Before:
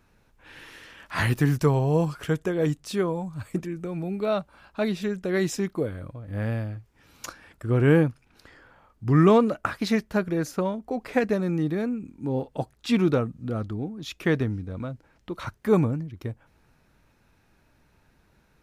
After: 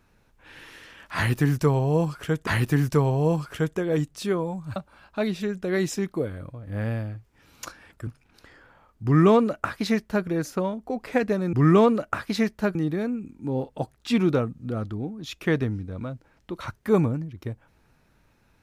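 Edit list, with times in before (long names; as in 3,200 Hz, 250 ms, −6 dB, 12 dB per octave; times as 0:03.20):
0:01.16–0:02.47: repeat, 2 plays
0:03.45–0:04.37: remove
0:07.68–0:08.08: remove
0:09.05–0:10.27: duplicate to 0:11.54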